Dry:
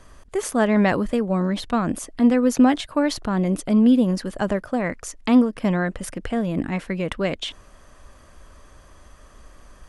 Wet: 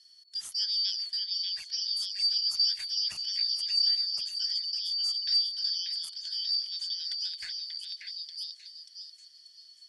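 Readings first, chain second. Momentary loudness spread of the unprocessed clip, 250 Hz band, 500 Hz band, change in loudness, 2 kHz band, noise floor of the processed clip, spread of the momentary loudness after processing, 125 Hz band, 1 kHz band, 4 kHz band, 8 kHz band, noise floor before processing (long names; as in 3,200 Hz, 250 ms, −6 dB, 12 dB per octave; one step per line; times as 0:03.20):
10 LU, below −40 dB, below −40 dB, −7.0 dB, −20.5 dB, −57 dBFS, 13 LU, below −40 dB, below −35 dB, +11.0 dB, −7.0 dB, −49 dBFS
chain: band-splitting scrambler in four parts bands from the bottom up 4321
guitar amp tone stack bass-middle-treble 5-5-5
echo through a band-pass that steps 586 ms, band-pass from 2,600 Hz, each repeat 0.7 octaves, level −1 dB
feedback echo with a swinging delay time 276 ms, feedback 31%, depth 79 cents, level −23 dB
level −5.5 dB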